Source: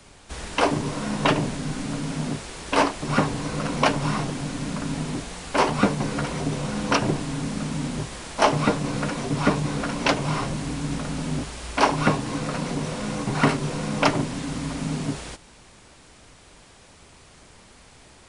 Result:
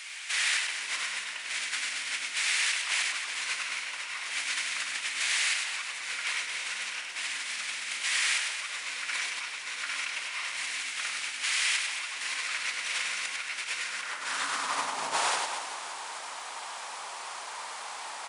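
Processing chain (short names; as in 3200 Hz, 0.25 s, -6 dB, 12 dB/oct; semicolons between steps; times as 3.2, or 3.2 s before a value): negative-ratio compressor -33 dBFS, ratio -1; reverse bouncing-ball echo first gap 0.1 s, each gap 1.25×, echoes 5; crackle 22/s -51 dBFS; high-pass sweep 2100 Hz -> 910 Hz, 13.77–14.95; gain +2 dB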